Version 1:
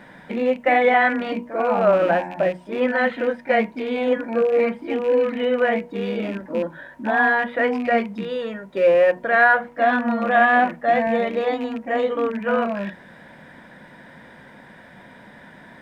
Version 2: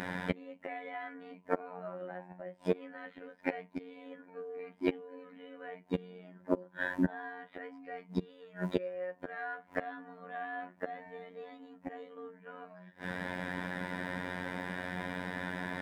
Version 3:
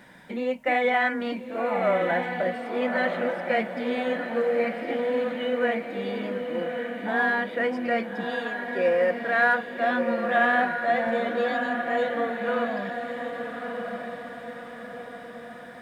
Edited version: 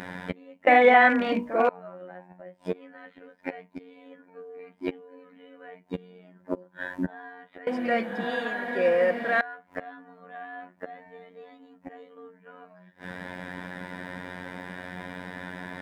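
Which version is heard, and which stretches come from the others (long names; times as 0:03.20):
2
0:00.67–0:01.69: punch in from 1
0:07.67–0:09.41: punch in from 3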